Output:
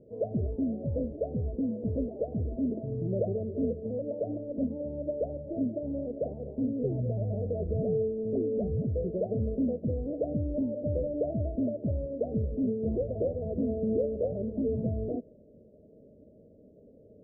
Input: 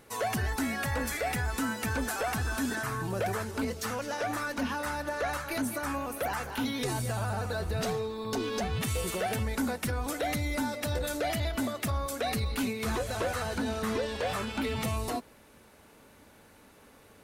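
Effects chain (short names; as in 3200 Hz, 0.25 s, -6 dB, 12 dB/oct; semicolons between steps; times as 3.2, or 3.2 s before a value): rippled Chebyshev low-pass 640 Hz, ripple 3 dB; low shelf 76 Hz -7.5 dB; gain +5.5 dB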